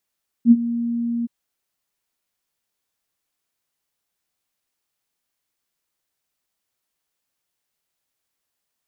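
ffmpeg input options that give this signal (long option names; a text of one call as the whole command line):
ffmpeg -f lavfi -i "aevalsrc='0.562*sin(2*PI*235*t)':duration=0.821:sample_rate=44100,afade=type=in:duration=0.062,afade=type=out:start_time=0.062:duration=0.043:silence=0.168,afade=type=out:start_time=0.8:duration=0.021" out.wav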